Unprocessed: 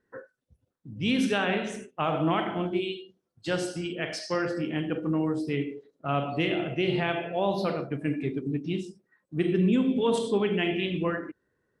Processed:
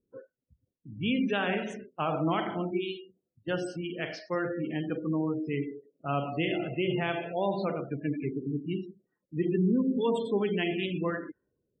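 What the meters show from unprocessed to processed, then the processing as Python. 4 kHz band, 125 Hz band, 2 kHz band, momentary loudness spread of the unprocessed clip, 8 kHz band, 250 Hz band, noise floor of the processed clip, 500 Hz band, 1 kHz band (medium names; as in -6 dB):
-4.5 dB, -2.5 dB, -3.0 dB, 11 LU, under -10 dB, -2.5 dB, -84 dBFS, -2.5 dB, -2.5 dB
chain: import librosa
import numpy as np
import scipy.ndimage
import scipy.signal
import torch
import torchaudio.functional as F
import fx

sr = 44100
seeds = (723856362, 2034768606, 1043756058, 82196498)

y = fx.env_lowpass(x, sr, base_hz=410.0, full_db=-26.0)
y = fx.spec_gate(y, sr, threshold_db=-25, keep='strong')
y = y * 10.0 ** (-2.5 / 20.0)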